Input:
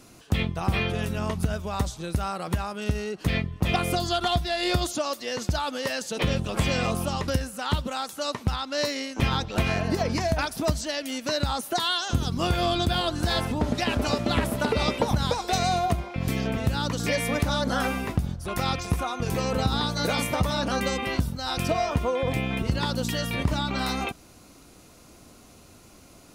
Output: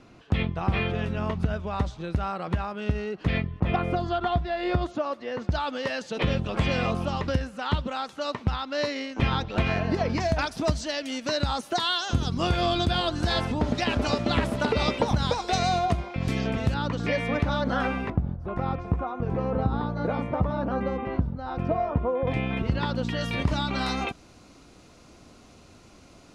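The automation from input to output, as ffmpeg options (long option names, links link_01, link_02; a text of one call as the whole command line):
ffmpeg -i in.wav -af "asetnsamples=nb_out_samples=441:pad=0,asendcmd='3.6 lowpass f 1800;5.52 lowpass f 3600;10.2 lowpass f 6000;16.74 lowpass f 2800;18.1 lowpass f 1100;22.27 lowpass f 2900;23.21 lowpass f 5900',lowpass=3000" out.wav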